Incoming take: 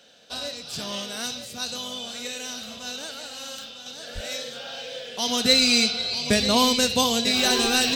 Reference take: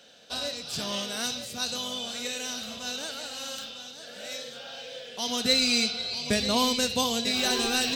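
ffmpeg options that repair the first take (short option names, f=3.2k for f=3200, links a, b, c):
-filter_complex "[0:a]asplit=3[a][b][c];[a]afade=t=out:st=4.14:d=0.02[d];[b]highpass=f=140:w=0.5412,highpass=f=140:w=1.3066,afade=t=in:st=4.14:d=0.02,afade=t=out:st=4.26:d=0.02[e];[c]afade=t=in:st=4.26:d=0.02[f];[d][e][f]amix=inputs=3:normalize=0,asetnsamples=n=441:p=0,asendcmd='3.86 volume volume -5dB',volume=0dB"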